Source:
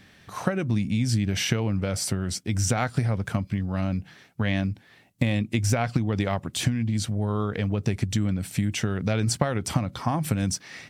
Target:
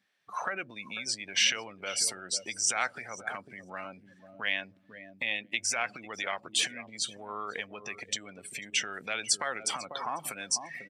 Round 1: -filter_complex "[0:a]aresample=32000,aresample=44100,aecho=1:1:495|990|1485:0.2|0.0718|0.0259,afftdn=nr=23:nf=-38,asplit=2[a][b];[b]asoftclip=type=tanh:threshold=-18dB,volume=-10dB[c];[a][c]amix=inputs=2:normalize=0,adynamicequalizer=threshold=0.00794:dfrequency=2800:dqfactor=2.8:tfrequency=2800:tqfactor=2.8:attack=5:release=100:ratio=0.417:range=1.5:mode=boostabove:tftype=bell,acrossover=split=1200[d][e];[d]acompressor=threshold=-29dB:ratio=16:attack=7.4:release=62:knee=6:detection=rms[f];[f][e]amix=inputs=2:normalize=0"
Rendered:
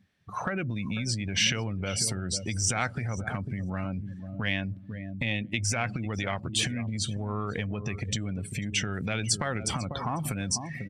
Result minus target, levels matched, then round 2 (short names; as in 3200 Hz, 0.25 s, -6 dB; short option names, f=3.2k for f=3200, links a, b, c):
soft clip: distortion +9 dB; 500 Hz band +3.0 dB
-filter_complex "[0:a]aresample=32000,aresample=44100,aecho=1:1:495|990|1485:0.2|0.0718|0.0259,afftdn=nr=23:nf=-38,asplit=2[a][b];[b]asoftclip=type=tanh:threshold=-11.5dB,volume=-10dB[c];[a][c]amix=inputs=2:normalize=0,adynamicequalizer=threshold=0.00794:dfrequency=2800:dqfactor=2.8:tfrequency=2800:tqfactor=2.8:attack=5:release=100:ratio=0.417:range=1.5:mode=boostabove:tftype=bell,acrossover=split=1200[d][e];[d]acompressor=threshold=-29dB:ratio=16:attack=7.4:release=62:knee=6:detection=rms,highpass=550[f];[f][e]amix=inputs=2:normalize=0"